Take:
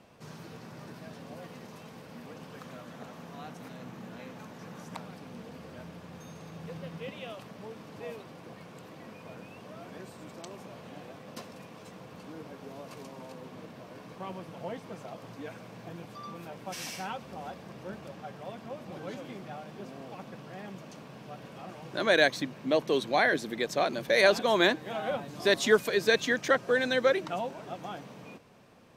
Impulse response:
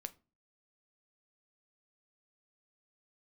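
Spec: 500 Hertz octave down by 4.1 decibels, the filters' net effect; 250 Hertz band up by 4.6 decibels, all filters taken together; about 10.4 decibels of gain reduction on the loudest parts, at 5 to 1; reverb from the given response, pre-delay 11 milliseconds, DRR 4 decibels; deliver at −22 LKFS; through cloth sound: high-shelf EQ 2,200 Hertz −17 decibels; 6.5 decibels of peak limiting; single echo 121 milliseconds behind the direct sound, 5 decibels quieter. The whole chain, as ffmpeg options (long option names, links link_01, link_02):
-filter_complex "[0:a]equalizer=frequency=250:width_type=o:gain=8,equalizer=frequency=500:width_type=o:gain=-6,acompressor=threshold=-30dB:ratio=5,alimiter=limit=-24dB:level=0:latency=1,aecho=1:1:121:0.562,asplit=2[link_01][link_02];[1:a]atrim=start_sample=2205,adelay=11[link_03];[link_02][link_03]afir=irnorm=-1:irlink=0,volume=-0.5dB[link_04];[link_01][link_04]amix=inputs=2:normalize=0,highshelf=frequency=2200:gain=-17,volume=17dB"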